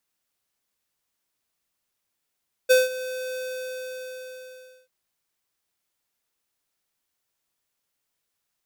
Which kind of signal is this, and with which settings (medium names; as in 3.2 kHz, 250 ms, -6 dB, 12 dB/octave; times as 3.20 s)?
ADSR square 511 Hz, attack 20 ms, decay 175 ms, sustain -17 dB, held 0.68 s, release 1510 ms -14.5 dBFS